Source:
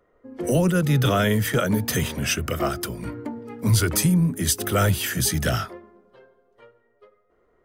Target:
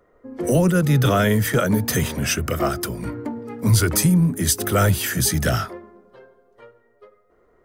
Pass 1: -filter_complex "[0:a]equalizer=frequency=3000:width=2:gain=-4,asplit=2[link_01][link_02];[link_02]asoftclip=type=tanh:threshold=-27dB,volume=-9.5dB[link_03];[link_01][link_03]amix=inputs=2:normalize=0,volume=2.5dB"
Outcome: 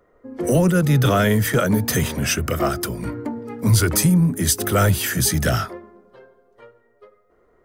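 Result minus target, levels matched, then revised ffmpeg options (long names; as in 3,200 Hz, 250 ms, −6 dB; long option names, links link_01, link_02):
soft clipping: distortion −4 dB
-filter_complex "[0:a]equalizer=frequency=3000:width=2:gain=-4,asplit=2[link_01][link_02];[link_02]asoftclip=type=tanh:threshold=-39dB,volume=-9.5dB[link_03];[link_01][link_03]amix=inputs=2:normalize=0,volume=2.5dB"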